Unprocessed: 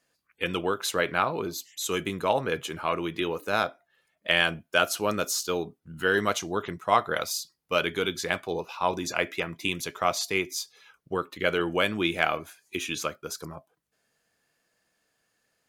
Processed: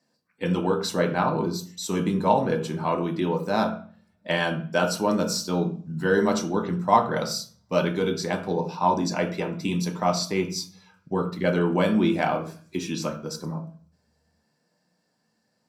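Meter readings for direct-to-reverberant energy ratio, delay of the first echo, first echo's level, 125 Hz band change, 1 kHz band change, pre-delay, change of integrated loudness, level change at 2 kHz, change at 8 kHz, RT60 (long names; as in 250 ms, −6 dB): 2.0 dB, no echo audible, no echo audible, +10.0 dB, +3.0 dB, 3 ms, +2.5 dB, −3.5 dB, −1.0 dB, 0.40 s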